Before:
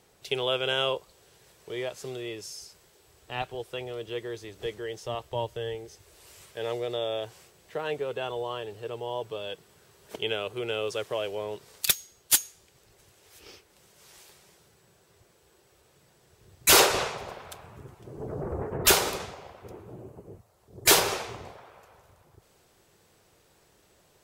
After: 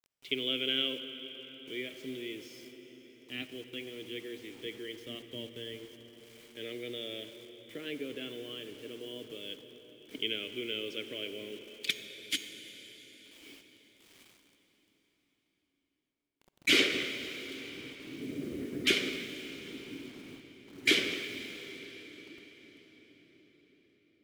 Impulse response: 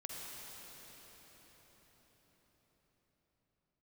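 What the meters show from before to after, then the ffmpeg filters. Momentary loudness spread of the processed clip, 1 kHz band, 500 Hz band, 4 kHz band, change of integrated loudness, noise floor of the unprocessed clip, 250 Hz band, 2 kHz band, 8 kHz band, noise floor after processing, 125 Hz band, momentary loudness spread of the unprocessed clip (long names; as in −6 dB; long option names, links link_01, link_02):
22 LU, −21.0 dB, −9.5 dB, −3.0 dB, −7.0 dB, −63 dBFS, +0.5 dB, −2.5 dB, −17.0 dB, −80 dBFS, −11.5 dB, 23 LU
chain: -filter_complex "[0:a]asplit=3[link_01][link_02][link_03];[link_01]bandpass=frequency=270:width_type=q:width=8,volume=0dB[link_04];[link_02]bandpass=frequency=2290:width_type=q:width=8,volume=-6dB[link_05];[link_03]bandpass=frequency=3010:width_type=q:width=8,volume=-9dB[link_06];[link_04][link_05][link_06]amix=inputs=3:normalize=0,acrusher=bits=10:mix=0:aa=0.000001,asplit=2[link_07][link_08];[1:a]atrim=start_sample=2205[link_09];[link_08][link_09]afir=irnorm=-1:irlink=0,volume=-3.5dB[link_10];[link_07][link_10]amix=inputs=2:normalize=0,volume=7dB"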